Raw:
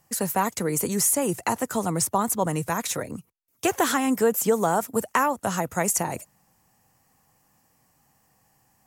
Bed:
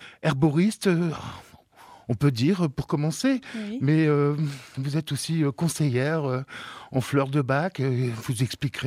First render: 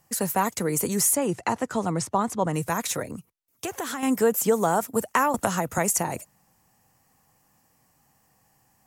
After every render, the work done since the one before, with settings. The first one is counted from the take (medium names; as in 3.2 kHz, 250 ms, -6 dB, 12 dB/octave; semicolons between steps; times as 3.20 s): 1.16–2.54 s: distance through air 76 m; 3.10–4.03 s: compression 3:1, threshold -30 dBFS; 5.34–5.78 s: three bands compressed up and down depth 100%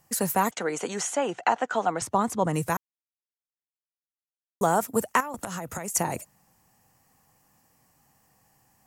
0.51–2.02 s: cabinet simulation 340–6600 Hz, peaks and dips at 370 Hz -3 dB, 750 Hz +8 dB, 1.5 kHz +7 dB, 3.1 kHz +6 dB, 5 kHz -7 dB; 2.77–4.61 s: mute; 5.20–5.95 s: compression 16:1, threshold -29 dBFS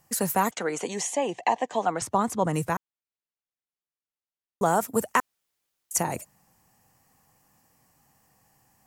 0.83–1.83 s: Butterworth band-stop 1.4 kHz, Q 2.2; 2.65–4.66 s: treble shelf 5.6 kHz -11 dB; 5.20–5.91 s: room tone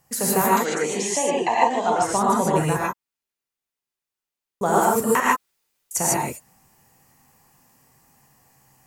gated-style reverb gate 170 ms rising, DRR -5.5 dB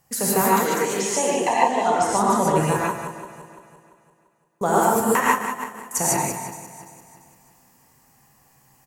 backward echo that repeats 171 ms, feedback 62%, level -12.5 dB; delay 184 ms -10 dB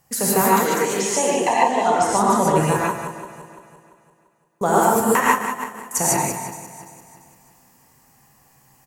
trim +2 dB; peak limiter -2 dBFS, peak gain reduction 1.5 dB